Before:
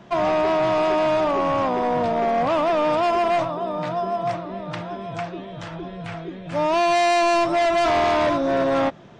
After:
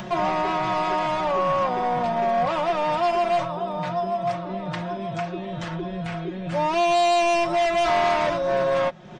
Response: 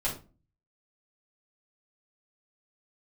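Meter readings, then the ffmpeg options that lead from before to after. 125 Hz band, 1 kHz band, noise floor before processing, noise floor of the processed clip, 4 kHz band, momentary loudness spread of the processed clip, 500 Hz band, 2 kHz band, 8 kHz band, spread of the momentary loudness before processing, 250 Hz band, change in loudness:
+1.0 dB, −0.5 dB, −37 dBFS, −33 dBFS, −0.5 dB, 10 LU, −2.5 dB, −1.5 dB, −1.0 dB, 14 LU, −4.0 dB, −2.5 dB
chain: -af "adynamicequalizer=threshold=0.0126:dfrequency=330:dqfactor=1.8:tfrequency=330:tqfactor=1.8:attack=5:release=100:ratio=0.375:range=3:mode=cutabove:tftype=bell,aecho=1:1:5.5:0.74,acompressor=mode=upward:threshold=-21dB:ratio=2.5,volume=-3dB"

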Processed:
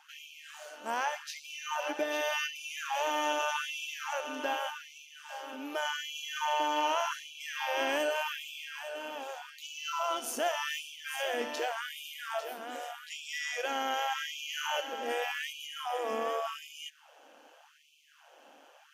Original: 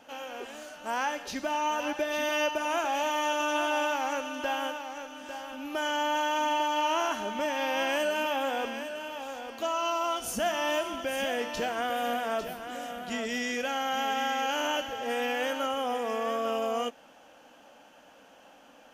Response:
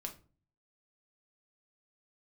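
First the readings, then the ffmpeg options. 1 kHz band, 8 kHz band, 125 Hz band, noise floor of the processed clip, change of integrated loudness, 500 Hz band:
−4.5 dB, −2.0 dB, can't be measured, −60 dBFS, −4.0 dB, −5.5 dB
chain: -af "tremolo=f=150:d=0.462,afftfilt=real='re*gte(b*sr/1024,200*pow(2300/200,0.5+0.5*sin(2*PI*0.85*pts/sr)))':imag='im*gte(b*sr/1024,200*pow(2300/200,0.5+0.5*sin(2*PI*0.85*pts/sr)))':win_size=1024:overlap=0.75"

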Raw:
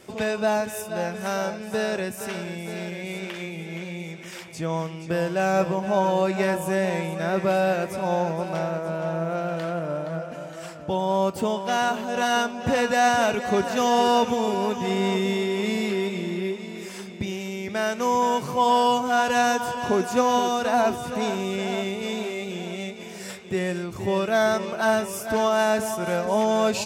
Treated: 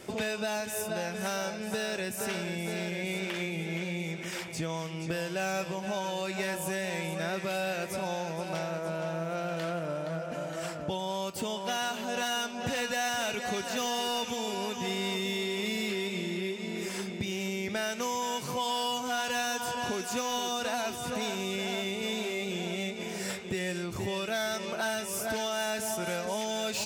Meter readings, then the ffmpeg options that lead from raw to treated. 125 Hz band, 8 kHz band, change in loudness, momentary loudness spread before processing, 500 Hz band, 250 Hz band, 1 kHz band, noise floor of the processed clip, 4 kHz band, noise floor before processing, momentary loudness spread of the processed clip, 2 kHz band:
−6.5 dB, −1.0 dB, −8.0 dB, 12 LU, −9.5 dB, −8.5 dB, −11.0 dB, −39 dBFS, −1.0 dB, −38 dBFS, 4 LU, −5.5 dB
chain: -filter_complex "[0:a]bandreject=frequency=1100:width=25,acrossover=split=2100[link_01][link_02];[link_01]acompressor=threshold=-33dB:ratio=12[link_03];[link_02]asoftclip=type=tanh:threshold=-32.5dB[link_04];[link_03][link_04]amix=inputs=2:normalize=0,volume=2dB"

